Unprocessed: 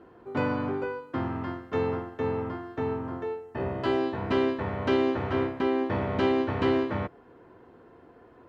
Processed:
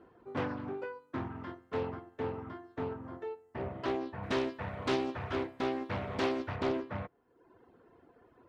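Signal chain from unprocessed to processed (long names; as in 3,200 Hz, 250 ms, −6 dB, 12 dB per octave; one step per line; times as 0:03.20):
reverb reduction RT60 0.88 s
0:04.23–0:06.56: high-shelf EQ 2,900 Hz +10.5 dB
highs frequency-modulated by the lows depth 0.53 ms
level −6 dB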